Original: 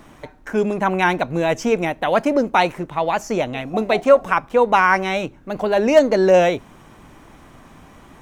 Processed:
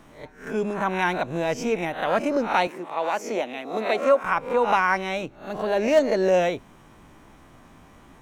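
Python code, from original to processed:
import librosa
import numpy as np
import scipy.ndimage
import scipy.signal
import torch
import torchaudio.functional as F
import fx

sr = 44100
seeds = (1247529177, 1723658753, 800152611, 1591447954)

y = fx.spec_swells(x, sr, rise_s=0.41)
y = fx.highpass(y, sr, hz=230.0, slope=24, at=(2.67, 4.24))
y = y * librosa.db_to_amplitude(-7.0)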